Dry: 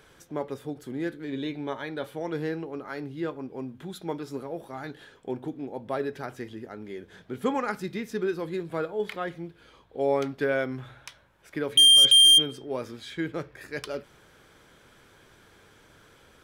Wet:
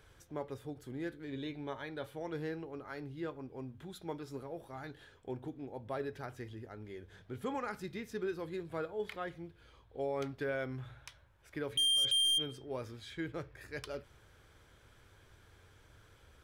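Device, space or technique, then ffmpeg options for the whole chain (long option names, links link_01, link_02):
car stereo with a boomy subwoofer: -af "lowshelf=frequency=130:width_type=q:width=1.5:gain=9,alimiter=limit=-19.5dB:level=0:latency=1:release=36,volume=-8dB"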